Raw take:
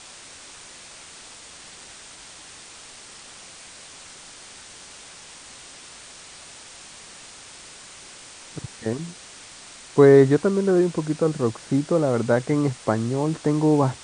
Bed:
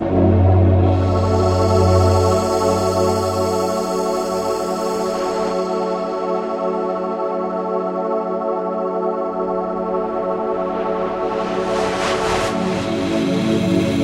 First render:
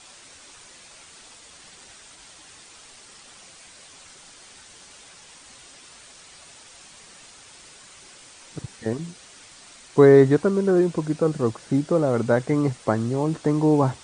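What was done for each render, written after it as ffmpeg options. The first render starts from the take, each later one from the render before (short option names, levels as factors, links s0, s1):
-af "afftdn=nr=6:nf=-44"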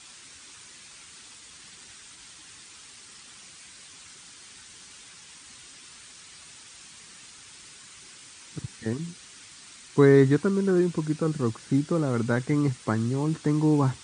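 -af "highpass=52,equalizer=f=620:t=o:w=1.1:g=-11.5"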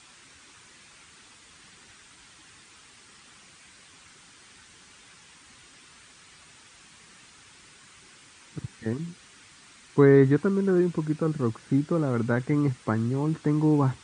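-filter_complex "[0:a]acrossover=split=2700[s0][s1];[s1]acompressor=threshold=0.00224:ratio=4:attack=1:release=60[s2];[s0][s2]amix=inputs=2:normalize=0"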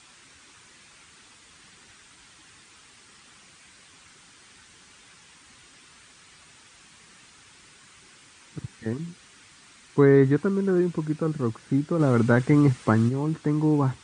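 -filter_complex "[0:a]asplit=3[s0][s1][s2];[s0]afade=t=out:st=11.99:d=0.02[s3];[s1]acontrast=50,afade=t=in:st=11.99:d=0.02,afade=t=out:st=13.08:d=0.02[s4];[s2]afade=t=in:st=13.08:d=0.02[s5];[s3][s4][s5]amix=inputs=3:normalize=0"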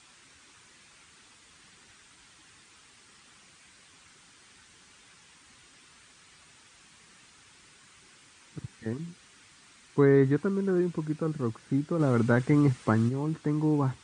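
-af "volume=0.631"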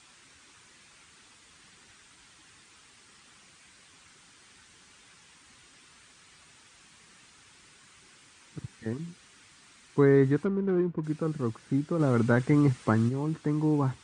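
-filter_complex "[0:a]asplit=3[s0][s1][s2];[s0]afade=t=out:st=10.44:d=0.02[s3];[s1]adynamicsmooth=sensitivity=2:basefreq=940,afade=t=in:st=10.44:d=0.02,afade=t=out:st=11.03:d=0.02[s4];[s2]afade=t=in:st=11.03:d=0.02[s5];[s3][s4][s5]amix=inputs=3:normalize=0"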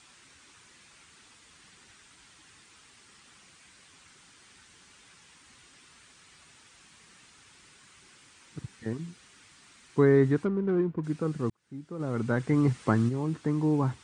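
-filter_complex "[0:a]asplit=2[s0][s1];[s0]atrim=end=11.5,asetpts=PTS-STARTPTS,afade=t=out:st=11.496:d=0.004:c=hsin[s2];[s1]atrim=start=11.5,asetpts=PTS-STARTPTS,afade=t=in:d=1.33[s3];[s2][s3]concat=n=2:v=0:a=1"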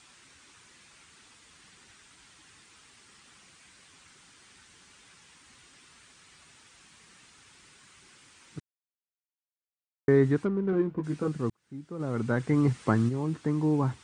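-filter_complex "[0:a]asettb=1/sr,asplit=3[s0][s1][s2];[s0]atrim=end=10.714[s3];[s1]atrim=start=10.71:end=11.28,asetpts=PTS-STARTPTS,afade=t=in:d=0.004:c=qsin,afade=t=out:st=0.566:d=0.004:c=qsin,asplit=2[s4][s5];[s5]adelay=15,volume=0.562[s6];[s4][s6]amix=inputs=2:normalize=0,atrim=end_sample=25137[s7];[s2]atrim=start=11.276[s8];[s3][s7]acrossfade=d=0.004:c1=hsin:c2=qsin[s9];[s9][s8]acrossfade=d=0.004:c1=qsin:c2=hsin,asplit=3[s10][s11][s12];[s10]atrim=end=8.6,asetpts=PTS-STARTPTS,afade=t=out:st=8.596:d=0.004:c=hsin[s13];[s11]atrim=start=8.6:end=10.08,asetpts=PTS-STARTPTS,volume=0[s14];[s12]atrim=start=10.08,asetpts=PTS-STARTPTS,afade=t=in:d=0.004:c=hsin[s15];[s13][s14][s15]concat=n=3:v=0:a=1"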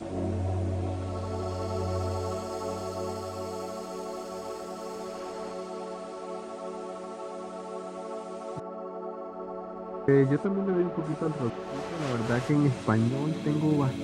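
-filter_complex "[1:a]volume=0.141[s0];[0:a][s0]amix=inputs=2:normalize=0"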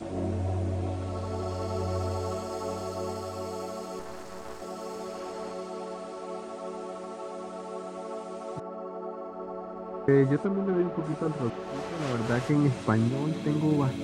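-filter_complex "[0:a]asettb=1/sr,asplit=3[s0][s1][s2];[s0]atrim=end=3.994[s3];[s1]atrim=start=3.99:end=4.62,asetpts=PTS-STARTPTS,afade=t=in:d=0.004:c=qsin,afade=t=out:st=0.626:d=0.004:c=qsin,aeval=exprs='max(val(0),0)':c=same[s4];[s2]atrim=start=4.616[s5];[s3][s4]acrossfade=d=0.004:c1=hsin:c2=qsin[s6];[s6][s5]acrossfade=d=0.004:c1=qsin:c2=hsin"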